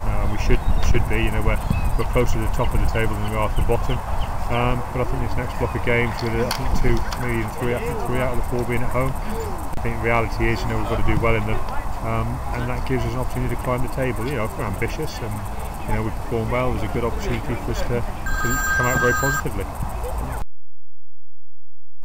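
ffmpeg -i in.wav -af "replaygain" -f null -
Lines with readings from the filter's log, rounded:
track_gain = +5.3 dB
track_peak = 0.450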